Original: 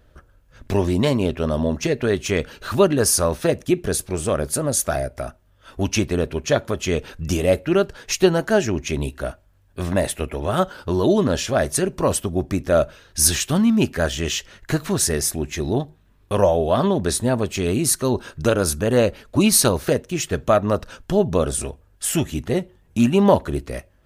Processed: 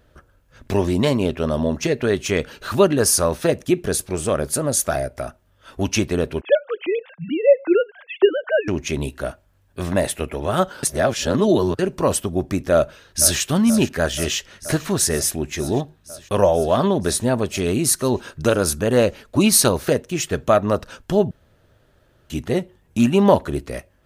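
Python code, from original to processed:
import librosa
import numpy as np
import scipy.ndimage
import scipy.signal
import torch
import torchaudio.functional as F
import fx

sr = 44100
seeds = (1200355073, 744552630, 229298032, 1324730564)

y = fx.sine_speech(x, sr, at=(6.41, 8.68))
y = fx.echo_throw(y, sr, start_s=12.73, length_s=0.67, ms=480, feedback_pct=80, wet_db=-13.5)
y = fx.edit(y, sr, fx.reverse_span(start_s=10.83, length_s=0.96),
    fx.room_tone_fill(start_s=21.31, length_s=0.99), tone=tone)
y = fx.low_shelf(y, sr, hz=64.0, db=-7.5)
y = y * 10.0 ** (1.0 / 20.0)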